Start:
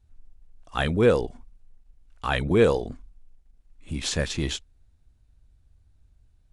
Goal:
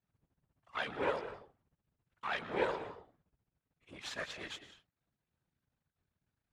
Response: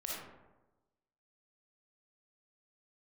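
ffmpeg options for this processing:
-filter_complex "[0:a]aeval=exprs='if(lt(val(0),0),0.251*val(0),val(0))':channel_layout=same,asplit=2[link_01][link_02];[1:a]atrim=start_sample=2205,afade=type=out:start_time=0.2:duration=0.01,atrim=end_sample=9261,adelay=114[link_03];[link_02][link_03]afir=irnorm=-1:irlink=0,volume=-12dB[link_04];[link_01][link_04]amix=inputs=2:normalize=0,afftfilt=real='hypot(re,im)*cos(2*PI*random(0))':imag='hypot(re,im)*sin(2*PI*random(1))':win_size=512:overlap=0.75,bandpass=frequency=1500:width_type=q:width=0.74:csg=0,volume=1dB"

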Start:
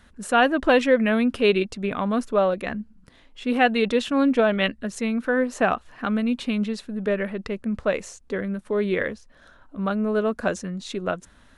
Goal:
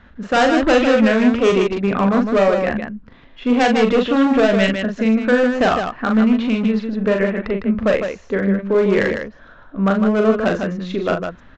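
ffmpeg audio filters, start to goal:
ffmpeg -i in.wav -af "lowpass=2500,aresample=16000,volume=19dB,asoftclip=hard,volume=-19dB,aresample=44100,aecho=1:1:40.82|154.5:0.562|0.501,volume=7dB" out.wav

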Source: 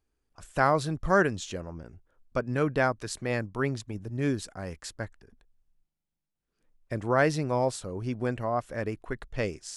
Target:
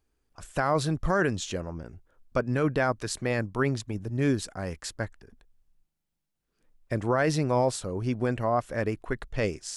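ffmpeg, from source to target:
ffmpeg -i in.wav -af "alimiter=limit=-18.5dB:level=0:latency=1:release=12,volume=3.5dB" out.wav

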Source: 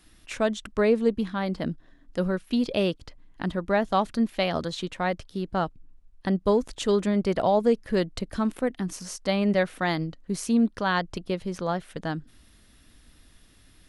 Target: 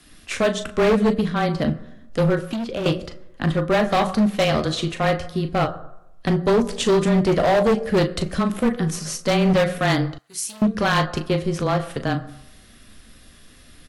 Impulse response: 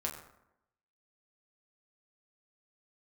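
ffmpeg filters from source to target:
-filter_complex "[0:a]afreqshift=-19,bandreject=frequency=900:width=7.2,aecho=1:1:13|38:0.168|0.316,asplit=2[link_01][link_02];[1:a]atrim=start_sample=2205[link_03];[link_02][link_03]afir=irnorm=-1:irlink=0,volume=-7.5dB[link_04];[link_01][link_04]amix=inputs=2:normalize=0,volume=18.5dB,asoftclip=hard,volume=-18.5dB,asettb=1/sr,asplit=3[link_05][link_06][link_07];[link_05]atrim=end=2.394[link_08];[link_06]atrim=start=2.39:end=2.86,asetpts=PTS-STARTPTS,afade=type=in:duration=0.004:curve=qsin,afade=type=out:start_time=0.466:duration=0.004:curve=qsin,acrossover=split=680|2600[link_09][link_10][link_11];[link_09]acompressor=threshold=-32dB:ratio=4[link_12];[link_10]acompressor=threshold=-41dB:ratio=4[link_13];[link_11]acompressor=threshold=-49dB:ratio=4[link_14];[link_12][link_13][link_14]amix=inputs=3:normalize=0[link_15];[link_07]atrim=start=2.856[link_16];[link_08][link_15]acrossfade=duration=0.004:curve1=hsin:curve2=qsin[link_17];[link_17][link_16]acrossfade=duration=0.004:curve1=qsin:curve2=hsin,asettb=1/sr,asplit=3[link_18][link_19][link_20];[link_18]atrim=end=10.184[link_21];[link_19]atrim=start=10.18:end=10.62,asetpts=PTS-STARTPTS,afade=type=in:duration=0.004:curve=qsin,afade=type=out:start_time=0.436:duration=0.004:curve=qsin,aderivative[link_22];[link_20]atrim=start=10.616[link_23];[link_21][link_22]acrossfade=duration=0.004:curve1=hsin:curve2=qsin[link_24];[link_24][link_23]acrossfade=duration=0.004:curve1=qsin:curve2=hsin,volume=5dB" -ar 44100 -c:a aac -b:a 64k

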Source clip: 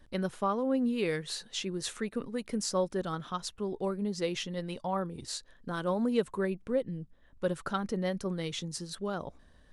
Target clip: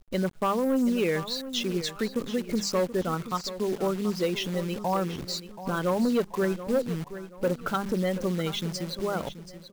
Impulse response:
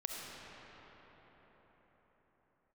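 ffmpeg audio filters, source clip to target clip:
-filter_complex "[0:a]lowpass=7500,bandreject=frequency=50:width_type=h:width=6,bandreject=frequency=100:width_type=h:width=6,bandreject=frequency=150:width_type=h:width=6,bandreject=frequency=200:width_type=h:width=6,afftdn=noise_reduction=25:noise_floor=-41,asplit=2[link_01][link_02];[link_02]acompressor=threshold=-42dB:ratio=6,volume=1dB[link_03];[link_01][link_03]amix=inputs=2:normalize=0,acrusher=bits=8:dc=4:mix=0:aa=0.000001,asoftclip=type=hard:threshold=-23dB,aecho=1:1:730|1460|2190:0.224|0.0784|0.0274,volume=3.5dB"

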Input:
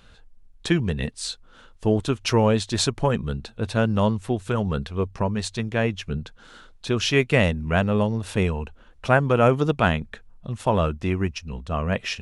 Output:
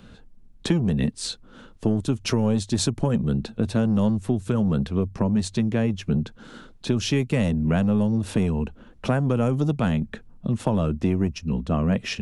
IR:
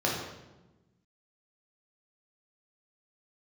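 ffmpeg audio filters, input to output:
-filter_complex "[0:a]equalizer=frequency=220:width=0.65:gain=14,acrossover=split=160|4900[link_01][link_02][link_03];[link_01]asoftclip=type=tanh:threshold=-25dB[link_04];[link_02]acompressor=threshold=-22dB:ratio=6[link_05];[link_04][link_05][link_03]amix=inputs=3:normalize=0"

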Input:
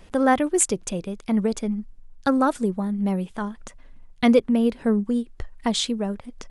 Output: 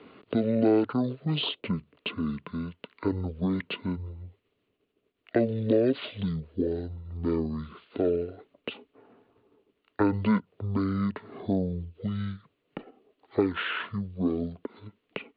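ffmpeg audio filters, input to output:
ffmpeg -i in.wav -filter_complex "[0:a]asetrate=18654,aresample=44100,highpass=240,equalizer=frequency=280:width_type=q:width=4:gain=5,equalizer=frequency=430:width_type=q:width=4:gain=8,equalizer=frequency=820:width_type=q:width=4:gain=-9,equalizer=frequency=1600:width_type=q:width=4:gain=-4,equalizer=frequency=2800:width_type=q:width=4:gain=4,lowpass=frequency=3400:width=0.5412,lowpass=frequency=3400:width=1.3066,acrossover=split=320|870[link_01][link_02][link_03];[link_01]acompressor=threshold=-32dB:ratio=4[link_04];[link_02]acompressor=threshold=-31dB:ratio=4[link_05];[link_03]acompressor=threshold=-38dB:ratio=4[link_06];[link_04][link_05][link_06]amix=inputs=3:normalize=0,volume=4.5dB" out.wav

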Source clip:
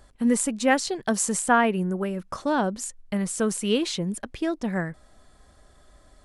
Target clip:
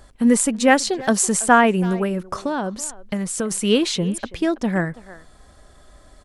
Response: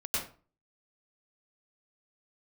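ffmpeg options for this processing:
-filter_complex "[0:a]asplit=3[link_01][link_02][link_03];[link_01]afade=type=out:start_time=2.32:duration=0.02[link_04];[link_02]acompressor=threshold=-27dB:ratio=6,afade=type=in:start_time=2.32:duration=0.02,afade=type=out:start_time=3.5:duration=0.02[link_05];[link_03]afade=type=in:start_time=3.5:duration=0.02[link_06];[link_04][link_05][link_06]amix=inputs=3:normalize=0,asplit=2[link_07][link_08];[link_08]adelay=330,highpass=300,lowpass=3400,asoftclip=type=hard:threshold=-15.5dB,volume=-17dB[link_09];[link_07][link_09]amix=inputs=2:normalize=0,volume=6dB"

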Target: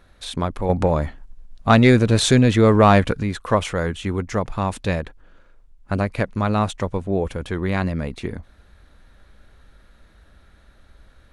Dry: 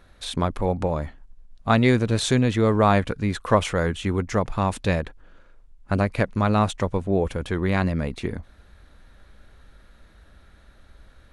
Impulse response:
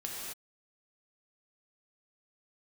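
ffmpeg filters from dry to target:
-filter_complex "[0:a]asettb=1/sr,asplit=3[link_01][link_02][link_03];[link_01]atrim=end=0.694[link_04];[link_02]atrim=start=0.69:end=3.23,asetpts=PTS-STARTPTS,afade=type=in:duration=0.004:curve=qsin,afade=type=out:start_time=2.536:duration=0.004:curve=qsin,acontrast=54[link_05];[link_03]atrim=start=3.226[link_06];[link_04][link_05]acrossfade=duration=0.004:curve1=hsin:curve2=qsin[link_07];[link_07][link_06]acrossfade=duration=0.004:curve1=qsin:curve2=hsin"

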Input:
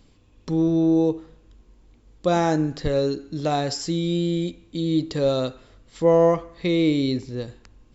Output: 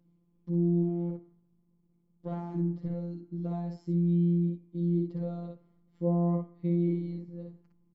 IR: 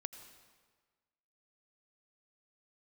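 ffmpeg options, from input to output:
-filter_complex "[0:a]asplit=3[link_01][link_02][link_03];[link_01]afade=type=out:start_time=0.82:duration=0.02[link_04];[link_02]aeval=exprs='max(val(0),0)':channel_layout=same,afade=type=in:start_time=0.82:duration=0.02,afade=type=out:start_time=2.54:duration=0.02[link_05];[link_03]afade=type=in:start_time=2.54:duration=0.02[link_06];[link_04][link_05][link_06]amix=inputs=3:normalize=0,bandpass=frequency=190:width_type=q:width=1.3:csg=0,afftfilt=real='hypot(re,im)*cos(PI*b)':imag='0':win_size=1024:overlap=0.75,asplit=2[link_07][link_08];[link_08]aecho=0:1:13|59:0.224|0.668[link_09];[link_07][link_09]amix=inputs=2:normalize=0,volume=-2.5dB"

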